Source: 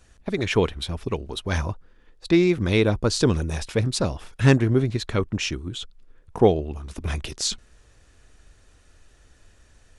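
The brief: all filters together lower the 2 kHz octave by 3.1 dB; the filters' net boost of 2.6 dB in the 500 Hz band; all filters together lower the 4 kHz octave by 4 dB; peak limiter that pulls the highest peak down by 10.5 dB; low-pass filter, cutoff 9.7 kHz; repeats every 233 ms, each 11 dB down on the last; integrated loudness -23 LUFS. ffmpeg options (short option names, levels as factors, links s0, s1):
-af "lowpass=9700,equalizer=f=500:t=o:g=3.5,equalizer=f=2000:t=o:g=-3,equalizer=f=4000:t=o:g=-4,alimiter=limit=0.224:level=0:latency=1,aecho=1:1:233|466|699:0.282|0.0789|0.0221,volume=1.33"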